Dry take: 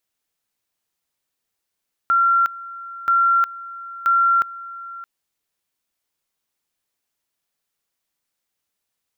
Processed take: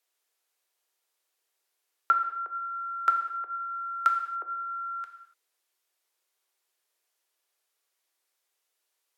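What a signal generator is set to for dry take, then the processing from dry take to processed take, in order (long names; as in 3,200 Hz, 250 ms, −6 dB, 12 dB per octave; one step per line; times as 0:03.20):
tone at two levels in turn 1,370 Hz −13 dBFS, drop 18.5 dB, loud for 0.36 s, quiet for 0.62 s, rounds 3
Butterworth high-pass 320 Hz 96 dB per octave
treble cut that deepens with the level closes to 520 Hz, closed at −14 dBFS
reverb whose tail is shaped and stops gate 310 ms falling, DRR 5 dB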